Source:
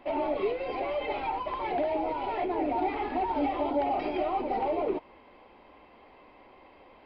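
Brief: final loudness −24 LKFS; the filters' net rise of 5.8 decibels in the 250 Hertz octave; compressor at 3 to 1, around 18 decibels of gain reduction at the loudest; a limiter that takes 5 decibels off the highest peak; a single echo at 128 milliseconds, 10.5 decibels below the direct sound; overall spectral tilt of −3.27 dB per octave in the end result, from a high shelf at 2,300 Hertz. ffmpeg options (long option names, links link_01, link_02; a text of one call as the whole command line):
ffmpeg -i in.wav -af "equalizer=frequency=250:width_type=o:gain=7.5,highshelf=frequency=2300:gain=5,acompressor=threshold=-46dB:ratio=3,alimiter=level_in=12dB:limit=-24dB:level=0:latency=1,volume=-12dB,aecho=1:1:128:0.299,volume=21.5dB" out.wav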